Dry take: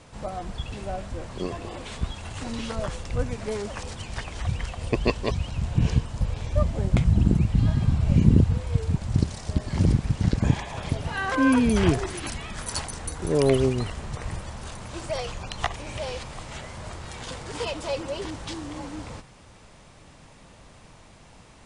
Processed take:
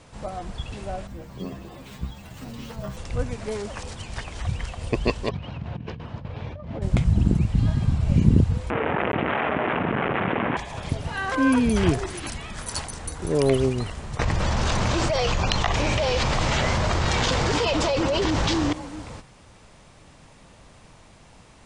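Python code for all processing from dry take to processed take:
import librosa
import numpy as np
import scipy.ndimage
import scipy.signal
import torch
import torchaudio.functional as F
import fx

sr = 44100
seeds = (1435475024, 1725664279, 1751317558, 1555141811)

y = fx.chain(x, sr, fx.peak_eq(hz=170.0, db=10.0, octaves=1.0),
    fx.stiff_resonator(f0_hz=65.0, decay_s=0.22, stiffness=0.002),
    fx.resample_bad(factor=2, down='filtered', up='hold'), at=(1.07, 2.97))
y = fx.chain(y, sr, fx.over_compress(threshold_db=-28.0, ratio=-1.0),
    fx.highpass(hz=110.0, slope=12),
    fx.air_absorb(metres=300.0), at=(5.29, 6.82))
y = fx.chain(y, sr, fx.delta_mod(bps=16000, step_db=-18.5),
    fx.bandpass_edges(low_hz=290.0, high_hz=2000.0),
    fx.env_flatten(amount_pct=100), at=(8.7, 10.57))
y = fx.chain(y, sr, fx.lowpass(hz=6800.0, slope=24),
    fx.env_flatten(amount_pct=100), at=(14.19, 18.73))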